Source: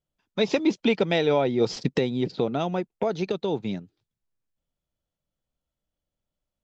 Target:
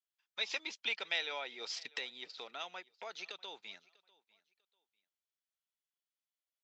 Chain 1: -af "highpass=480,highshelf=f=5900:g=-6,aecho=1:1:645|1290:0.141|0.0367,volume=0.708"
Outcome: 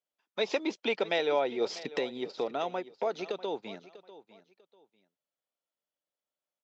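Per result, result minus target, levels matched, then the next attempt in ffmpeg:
500 Hz band +11.5 dB; echo-to-direct +7 dB
-af "highpass=1800,highshelf=f=5900:g=-6,aecho=1:1:645|1290:0.141|0.0367,volume=0.708"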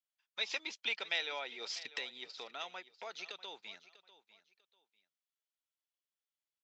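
echo-to-direct +7 dB
-af "highpass=1800,highshelf=f=5900:g=-6,aecho=1:1:645|1290:0.0631|0.0164,volume=0.708"

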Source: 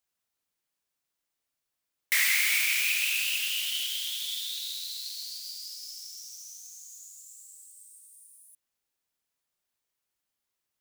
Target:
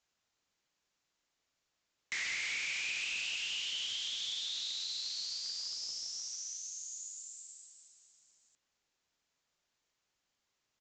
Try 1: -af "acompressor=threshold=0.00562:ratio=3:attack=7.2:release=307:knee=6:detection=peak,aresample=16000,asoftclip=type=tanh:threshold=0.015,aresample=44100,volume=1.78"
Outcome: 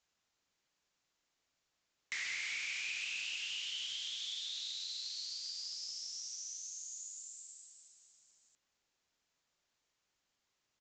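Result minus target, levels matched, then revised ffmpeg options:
compression: peak gain reduction +4.5 dB
-af "acompressor=threshold=0.0119:ratio=3:attack=7.2:release=307:knee=6:detection=peak,aresample=16000,asoftclip=type=tanh:threshold=0.015,aresample=44100,volume=1.78"

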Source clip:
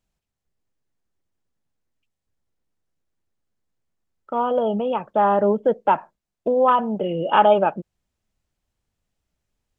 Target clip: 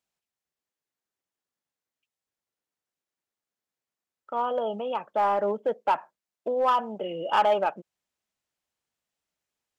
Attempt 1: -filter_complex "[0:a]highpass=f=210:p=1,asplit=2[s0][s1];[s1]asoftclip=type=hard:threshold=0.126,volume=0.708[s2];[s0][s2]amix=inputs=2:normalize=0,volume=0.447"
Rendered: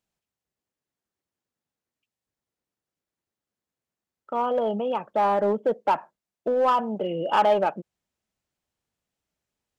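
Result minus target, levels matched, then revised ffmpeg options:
250 Hz band +5.0 dB
-filter_complex "[0:a]highpass=f=720:p=1,asplit=2[s0][s1];[s1]asoftclip=type=hard:threshold=0.126,volume=0.708[s2];[s0][s2]amix=inputs=2:normalize=0,volume=0.447"

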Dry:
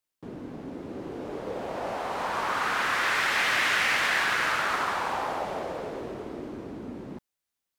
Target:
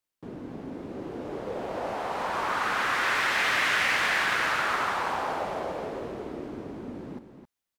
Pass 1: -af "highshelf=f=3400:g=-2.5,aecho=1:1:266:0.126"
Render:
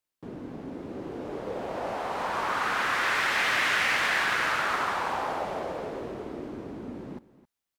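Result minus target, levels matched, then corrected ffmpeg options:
echo-to-direct -8.5 dB
-af "highshelf=f=3400:g=-2.5,aecho=1:1:266:0.335"

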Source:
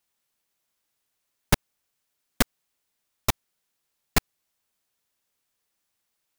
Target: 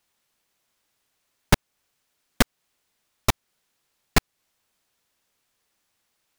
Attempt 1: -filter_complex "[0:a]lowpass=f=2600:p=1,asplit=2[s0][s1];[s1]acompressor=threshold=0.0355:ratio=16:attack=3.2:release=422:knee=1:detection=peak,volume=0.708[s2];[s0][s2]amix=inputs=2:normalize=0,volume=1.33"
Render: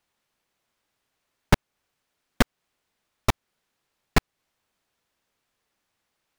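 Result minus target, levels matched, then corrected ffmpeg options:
8 kHz band -5.0 dB
-filter_complex "[0:a]lowpass=f=7200:p=1,asplit=2[s0][s1];[s1]acompressor=threshold=0.0355:ratio=16:attack=3.2:release=422:knee=1:detection=peak,volume=0.708[s2];[s0][s2]amix=inputs=2:normalize=0,volume=1.33"

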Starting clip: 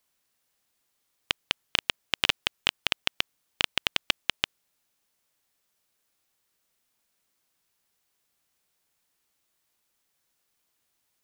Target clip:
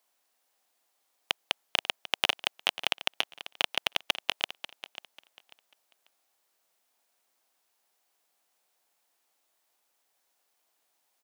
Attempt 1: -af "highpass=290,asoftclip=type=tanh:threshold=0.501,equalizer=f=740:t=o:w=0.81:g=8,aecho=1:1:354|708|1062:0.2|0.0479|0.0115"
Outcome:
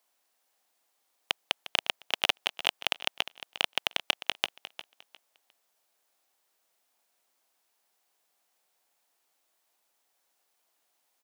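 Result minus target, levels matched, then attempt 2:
echo 188 ms early
-af "highpass=290,asoftclip=type=tanh:threshold=0.501,equalizer=f=740:t=o:w=0.81:g=8,aecho=1:1:542|1084|1626:0.2|0.0479|0.0115"

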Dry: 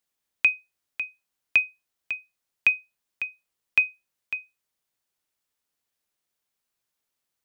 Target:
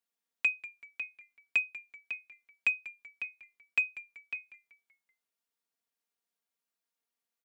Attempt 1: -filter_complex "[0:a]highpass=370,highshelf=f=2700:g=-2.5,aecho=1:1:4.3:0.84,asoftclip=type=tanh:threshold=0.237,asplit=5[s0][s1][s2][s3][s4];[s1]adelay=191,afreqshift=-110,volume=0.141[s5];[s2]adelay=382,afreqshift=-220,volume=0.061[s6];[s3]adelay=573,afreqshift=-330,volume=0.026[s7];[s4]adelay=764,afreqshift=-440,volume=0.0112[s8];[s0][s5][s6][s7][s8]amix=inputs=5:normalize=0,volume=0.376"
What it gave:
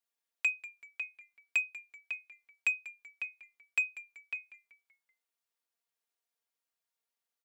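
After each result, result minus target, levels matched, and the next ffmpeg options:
250 Hz band -9.0 dB; saturation: distortion +11 dB
-filter_complex "[0:a]highpass=180,highshelf=f=2700:g=-2.5,aecho=1:1:4.3:0.84,asoftclip=type=tanh:threshold=0.237,asplit=5[s0][s1][s2][s3][s4];[s1]adelay=191,afreqshift=-110,volume=0.141[s5];[s2]adelay=382,afreqshift=-220,volume=0.061[s6];[s3]adelay=573,afreqshift=-330,volume=0.026[s7];[s4]adelay=764,afreqshift=-440,volume=0.0112[s8];[s0][s5][s6][s7][s8]amix=inputs=5:normalize=0,volume=0.376"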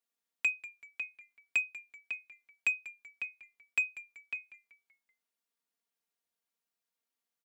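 saturation: distortion +11 dB
-filter_complex "[0:a]highpass=180,highshelf=f=2700:g=-2.5,aecho=1:1:4.3:0.84,asoftclip=type=tanh:threshold=0.531,asplit=5[s0][s1][s2][s3][s4];[s1]adelay=191,afreqshift=-110,volume=0.141[s5];[s2]adelay=382,afreqshift=-220,volume=0.061[s6];[s3]adelay=573,afreqshift=-330,volume=0.026[s7];[s4]adelay=764,afreqshift=-440,volume=0.0112[s8];[s0][s5][s6][s7][s8]amix=inputs=5:normalize=0,volume=0.376"

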